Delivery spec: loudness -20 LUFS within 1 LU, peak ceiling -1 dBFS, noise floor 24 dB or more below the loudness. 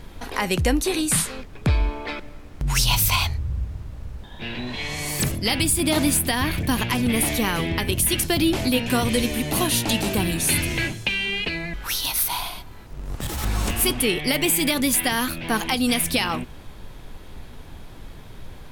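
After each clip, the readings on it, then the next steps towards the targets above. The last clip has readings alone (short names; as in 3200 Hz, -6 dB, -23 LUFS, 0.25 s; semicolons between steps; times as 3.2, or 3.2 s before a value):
noise floor -41 dBFS; noise floor target -46 dBFS; loudness -22.0 LUFS; peak -8.0 dBFS; loudness target -20.0 LUFS
-> noise print and reduce 6 dB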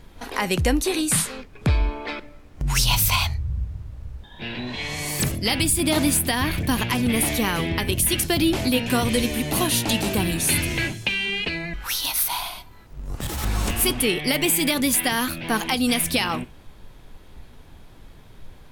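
noise floor -46 dBFS; loudness -22.0 LUFS; peak -8.0 dBFS; loudness target -20.0 LUFS
-> gain +2 dB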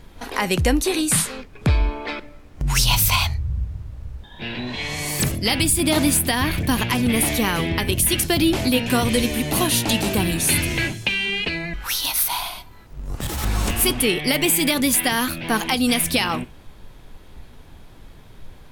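loudness -20.0 LUFS; peak -6.0 dBFS; noise floor -44 dBFS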